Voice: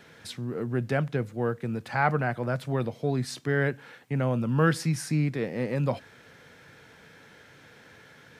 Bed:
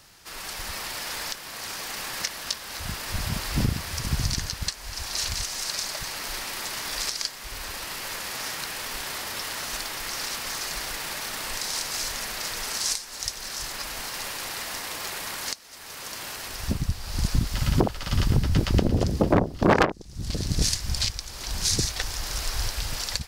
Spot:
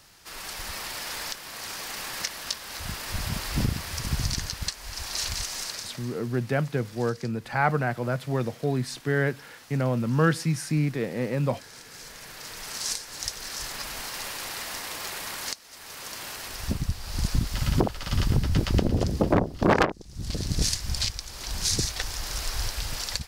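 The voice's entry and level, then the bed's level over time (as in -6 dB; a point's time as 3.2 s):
5.60 s, +1.0 dB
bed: 5.58 s -1.5 dB
6.28 s -18.5 dB
11.72 s -18.5 dB
13.04 s -1.5 dB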